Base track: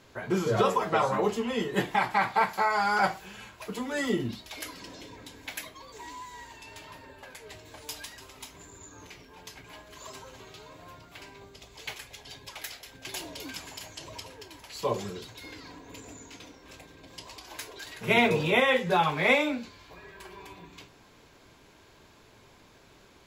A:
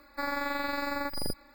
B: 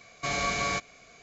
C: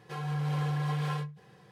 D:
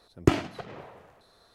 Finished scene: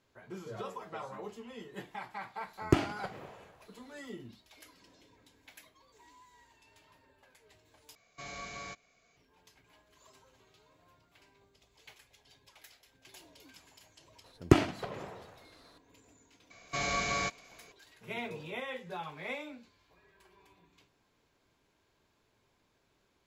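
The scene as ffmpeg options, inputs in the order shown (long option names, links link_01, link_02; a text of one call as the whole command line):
ffmpeg -i bed.wav -i cue0.wav -i cue1.wav -i cue2.wav -i cue3.wav -filter_complex "[4:a]asplit=2[link_01][link_02];[2:a]asplit=2[link_03][link_04];[0:a]volume=-17dB,asplit=2[link_05][link_06];[link_05]atrim=end=7.954[link_07];[link_03]atrim=end=1.22,asetpts=PTS-STARTPTS,volume=-15dB[link_08];[link_06]atrim=start=9.166[link_09];[link_01]atrim=end=1.54,asetpts=PTS-STARTPTS,volume=-4.5dB,afade=type=in:duration=0.004:curve=hsin,afade=type=out:start_time=1.536:duration=0.004:curve=hsin,adelay=2450[link_10];[link_02]atrim=end=1.54,asetpts=PTS-STARTPTS,volume=-0.5dB,afade=type=in:duration=0.004:curve=hsin,afade=type=out:start_time=1.536:duration=0.004:curve=hsin,adelay=14240[link_11];[link_04]atrim=end=1.22,asetpts=PTS-STARTPTS,volume=-3.5dB,afade=type=in:duration=0.004:curve=hsin,afade=type=out:start_time=1.216:duration=0.004:curve=hsin,adelay=16500[link_12];[link_07][link_08]acrossfade=duration=0.004:curve1=hsin:curve2=hsin[link_13];[link_13][link_09]acrossfade=duration=0.004:curve1=hsin:curve2=hsin[link_14];[link_14][link_10][link_11][link_12]amix=inputs=4:normalize=0" out.wav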